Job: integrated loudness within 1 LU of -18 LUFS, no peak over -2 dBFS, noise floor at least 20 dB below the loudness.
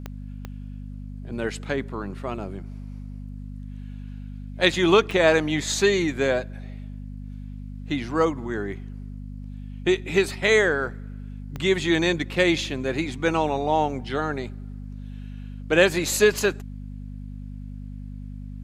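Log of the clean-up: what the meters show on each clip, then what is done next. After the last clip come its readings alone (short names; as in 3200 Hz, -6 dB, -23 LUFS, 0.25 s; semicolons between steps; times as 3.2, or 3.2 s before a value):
clicks 4; hum 50 Hz; harmonics up to 250 Hz; hum level -33 dBFS; loudness -23.0 LUFS; peak -4.0 dBFS; loudness target -18.0 LUFS
-> de-click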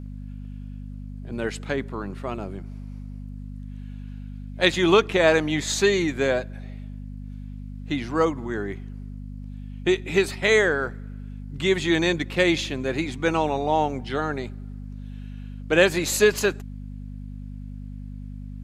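clicks 0; hum 50 Hz; harmonics up to 250 Hz; hum level -33 dBFS
-> de-hum 50 Hz, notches 5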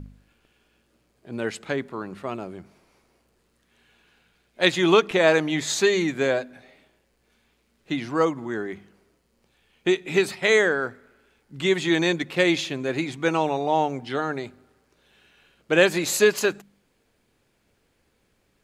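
hum none; loudness -23.0 LUFS; peak -4.0 dBFS; loudness target -18.0 LUFS
-> gain +5 dB; limiter -2 dBFS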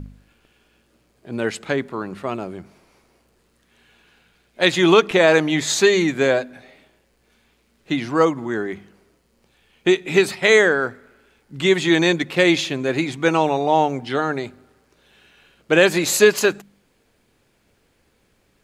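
loudness -18.5 LUFS; peak -2.0 dBFS; noise floor -63 dBFS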